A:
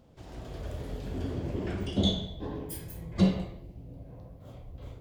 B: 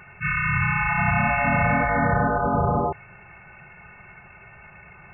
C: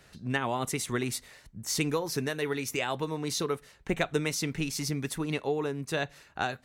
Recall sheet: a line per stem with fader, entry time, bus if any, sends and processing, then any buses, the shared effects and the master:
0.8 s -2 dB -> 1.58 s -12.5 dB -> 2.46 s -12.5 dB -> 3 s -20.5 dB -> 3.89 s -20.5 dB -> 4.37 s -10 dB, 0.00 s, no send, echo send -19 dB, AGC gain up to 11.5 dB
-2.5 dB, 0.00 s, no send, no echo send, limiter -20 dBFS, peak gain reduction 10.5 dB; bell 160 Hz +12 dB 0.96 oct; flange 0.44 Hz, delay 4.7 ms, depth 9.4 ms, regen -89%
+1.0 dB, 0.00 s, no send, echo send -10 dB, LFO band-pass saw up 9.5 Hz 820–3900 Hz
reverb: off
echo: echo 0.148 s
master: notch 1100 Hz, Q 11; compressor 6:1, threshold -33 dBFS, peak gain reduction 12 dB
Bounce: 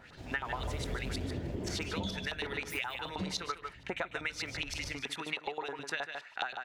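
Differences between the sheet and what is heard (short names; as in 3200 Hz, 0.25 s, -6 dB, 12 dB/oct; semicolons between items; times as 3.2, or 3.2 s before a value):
stem B: muted; stem C +1.0 dB -> +10.5 dB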